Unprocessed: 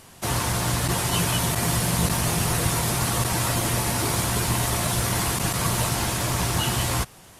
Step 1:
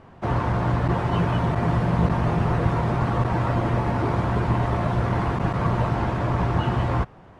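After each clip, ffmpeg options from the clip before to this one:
-af "lowpass=1.3k,volume=3.5dB"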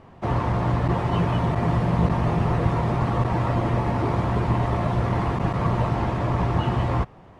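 -af "equalizer=f=1.5k:w=7.1:g=-6"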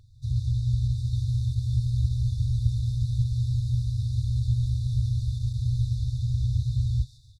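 -filter_complex "[0:a]asplit=6[a][b][c][d][e][f];[b]adelay=140,afreqshift=130,volume=-6.5dB[g];[c]adelay=280,afreqshift=260,volume=-13.4dB[h];[d]adelay=420,afreqshift=390,volume=-20.4dB[i];[e]adelay=560,afreqshift=520,volume=-27.3dB[j];[f]adelay=700,afreqshift=650,volume=-34.2dB[k];[a][g][h][i][j][k]amix=inputs=6:normalize=0,afftfilt=real='re*(1-between(b*sr/4096,130,3500))':imag='im*(1-between(b*sr/4096,130,3500))':win_size=4096:overlap=0.75"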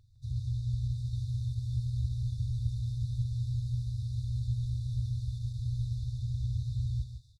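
-af "aecho=1:1:157:0.282,volume=-8dB"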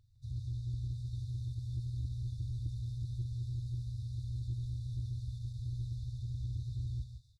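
-af "asoftclip=type=tanh:threshold=-22dB,volume=-5dB"

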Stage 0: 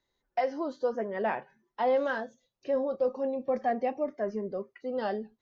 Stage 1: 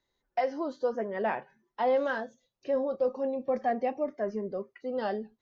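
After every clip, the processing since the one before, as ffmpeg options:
-af anull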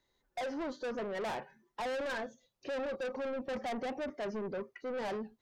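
-af "aeval=exprs='(tanh(70.8*val(0)+0.05)-tanh(0.05))/70.8':c=same,volume=2.5dB"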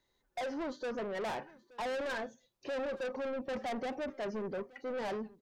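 -af "aecho=1:1:874:0.0794"

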